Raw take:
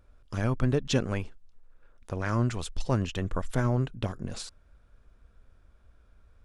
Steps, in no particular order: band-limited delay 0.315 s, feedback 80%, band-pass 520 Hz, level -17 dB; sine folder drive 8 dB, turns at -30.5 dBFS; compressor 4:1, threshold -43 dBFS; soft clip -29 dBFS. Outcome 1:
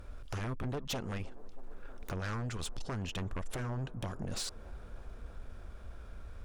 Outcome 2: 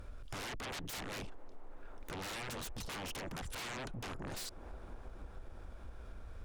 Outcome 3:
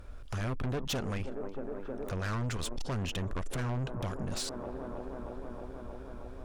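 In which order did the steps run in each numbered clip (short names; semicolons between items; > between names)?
compressor > sine folder > band-limited delay > soft clip; sine folder > band-limited delay > compressor > soft clip; band-limited delay > soft clip > compressor > sine folder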